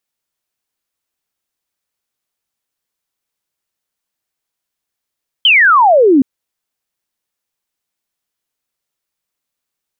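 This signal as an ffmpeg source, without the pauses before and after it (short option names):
-f lavfi -i "aevalsrc='0.562*clip(t/0.002,0,1)*clip((0.77-t)/0.002,0,1)*sin(2*PI*3200*0.77/log(250/3200)*(exp(log(250/3200)*t/0.77)-1))':d=0.77:s=44100"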